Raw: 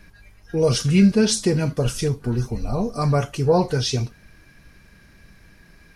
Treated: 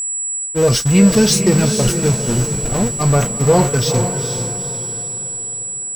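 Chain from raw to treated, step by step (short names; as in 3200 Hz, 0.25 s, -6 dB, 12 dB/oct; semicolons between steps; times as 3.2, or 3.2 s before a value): zero-crossing step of -21 dBFS; gate -19 dBFS, range -59 dB; whine 7800 Hz -22 dBFS; diffused feedback echo 0.453 s, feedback 44%, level -7 dB; gain +2.5 dB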